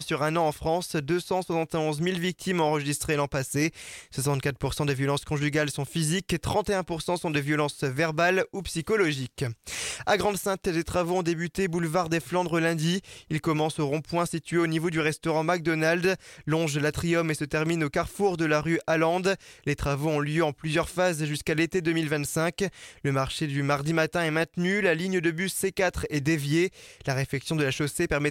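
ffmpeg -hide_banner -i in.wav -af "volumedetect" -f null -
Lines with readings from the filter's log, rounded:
mean_volume: -26.8 dB
max_volume: -10.0 dB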